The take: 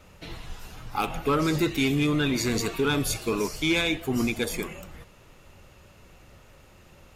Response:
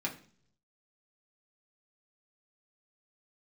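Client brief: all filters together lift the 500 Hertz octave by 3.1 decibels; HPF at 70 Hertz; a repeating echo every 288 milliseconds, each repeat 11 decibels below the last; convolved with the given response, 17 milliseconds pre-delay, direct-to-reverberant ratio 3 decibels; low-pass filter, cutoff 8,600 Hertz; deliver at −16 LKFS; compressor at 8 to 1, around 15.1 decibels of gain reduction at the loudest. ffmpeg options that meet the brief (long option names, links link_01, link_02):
-filter_complex "[0:a]highpass=70,lowpass=8600,equalizer=frequency=500:width_type=o:gain=4,acompressor=threshold=-35dB:ratio=8,aecho=1:1:288|576|864:0.282|0.0789|0.0221,asplit=2[link_01][link_02];[1:a]atrim=start_sample=2205,adelay=17[link_03];[link_02][link_03]afir=irnorm=-1:irlink=0,volume=-6.5dB[link_04];[link_01][link_04]amix=inputs=2:normalize=0,volume=20dB"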